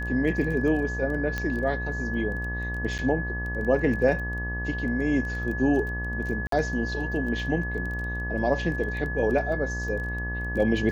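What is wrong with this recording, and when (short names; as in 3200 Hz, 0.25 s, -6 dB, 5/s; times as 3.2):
buzz 60 Hz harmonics 20 -32 dBFS
crackle 15/s -33 dBFS
tone 1700 Hz -32 dBFS
1.38 pop -15 dBFS
2.98–2.99 gap 8.4 ms
6.47–6.52 gap 53 ms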